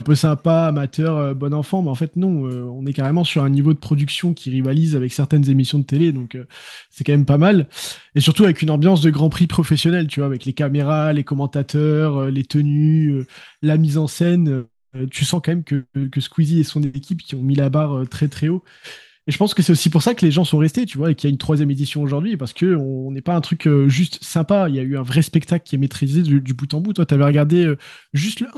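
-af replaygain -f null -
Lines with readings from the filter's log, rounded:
track_gain = -1.1 dB
track_peak = 0.608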